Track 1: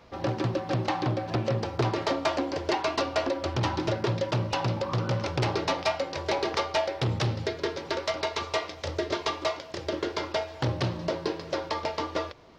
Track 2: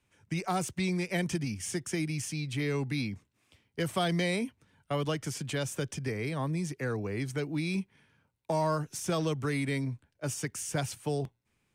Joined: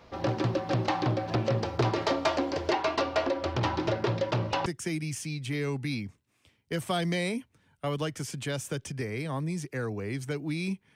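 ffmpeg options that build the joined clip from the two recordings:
ffmpeg -i cue0.wav -i cue1.wav -filter_complex "[0:a]asettb=1/sr,asplit=3[link_01][link_02][link_03];[link_01]atrim=end=2.714[link_04];[link_02]atrim=start=2.71:end=4.66,asetpts=PTS-STARTPTS,afade=type=in:duration=0.004:curve=qsin,afade=type=out:start_time=1.946:duration=0.004:curve=qsin,bass=frequency=250:gain=-2,treble=frequency=4000:gain=-5[link_05];[link_03]atrim=start=4.656[link_06];[link_04][link_05]acrossfade=duration=0.004:curve1=hsin:curve2=qsin[link_07];[link_07][link_06]acrossfade=duration=0.004:curve1=qsin:curve2=hsin,apad=whole_dur=10.95,atrim=end=10.95,atrim=end=4.662[link_08];[1:a]atrim=start=1.728:end=8.02[link_09];[link_08][link_09]acrossfade=duration=0.004:curve1=hsin:curve2=hsin" out.wav

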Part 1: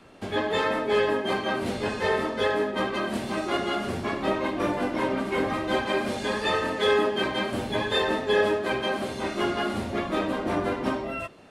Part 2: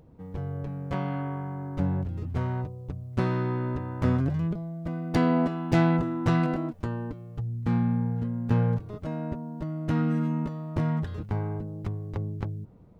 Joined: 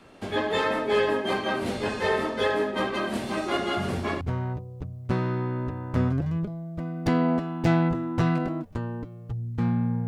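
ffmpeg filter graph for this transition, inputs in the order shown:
ffmpeg -i cue0.wav -i cue1.wav -filter_complex "[1:a]asplit=2[link_01][link_02];[0:a]apad=whole_dur=10.07,atrim=end=10.07,atrim=end=4.212[link_03];[link_02]atrim=start=2.288:end=8.15[link_04];[link_01]atrim=start=1.85:end=2.29,asetpts=PTS-STARTPTS,volume=-6dB,afade=type=in:duration=0.004:curve=hsin,afade=type=out:start_time=0.436:duration=0.004:curve=hsin,adelay=166257S[link_05];[link_03][link_04]acrossfade=duration=0.004:curve1=hsin:curve2=hsin[link_06];[link_06][link_05]amix=inputs=2:normalize=0" out.wav

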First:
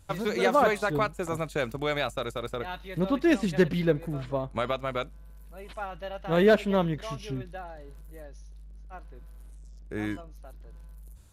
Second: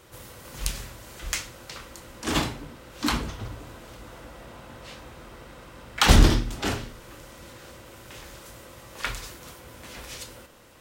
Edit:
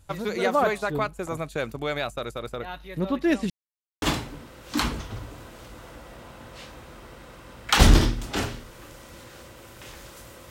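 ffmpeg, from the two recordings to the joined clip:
ffmpeg -i cue0.wav -i cue1.wav -filter_complex "[0:a]apad=whole_dur=10.5,atrim=end=10.5,asplit=2[link_01][link_02];[link_01]atrim=end=3.5,asetpts=PTS-STARTPTS,afade=type=out:start_time=3.496:duration=0.004:curve=hsin[link_03];[link_02]atrim=start=3.5:end=4.02,asetpts=PTS-STARTPTS,volume=0[link_04];[1:a]atrim=start=2.31:end=8.79,asetpts=PTS-STARTPTS,afade=type=in:duration=0.004:curve=hsin[link_05];[link_03][link_04][link_05]concat=n=3:v=0:a=1" out.wav

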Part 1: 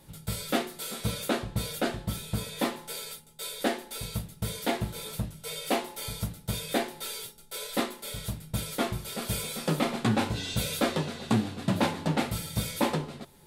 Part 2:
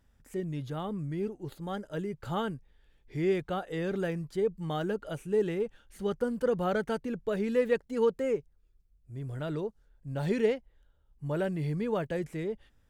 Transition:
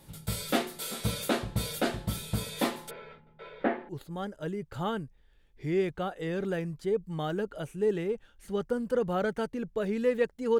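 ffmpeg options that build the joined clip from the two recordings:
ffmpeg -i cue0.wav -i cue1.wav -filter_complex "[0:a]asplit=3[link_01][link_02][link_03];[link_01]afade=type=out:start_time=2.89:duration=0.02[link_04];[link_02]lowpass=frequency=2100:width=0.5412,lowpass=frequency=2100:width=1.3066,afade=type=in:start_time=2.89:duration=0.02,afade=type=out:start_time=3.89:duration=0.02[link_05];[link_03]afade=type=in:start_time=3.89:duration=0.02[link_06];[link_04][link_05][link_06]amix=inputs=3:normalize=0,apad=whole_dur=10.59,atrim=end=10.59,atrim=end=3.892[link_07];[1:a]atrim=start=1.398:end=8.1[link_08];[link_07][link_08]acrossfade=duration=0.004:curve1=hsin:curve2=hsin" out.wav

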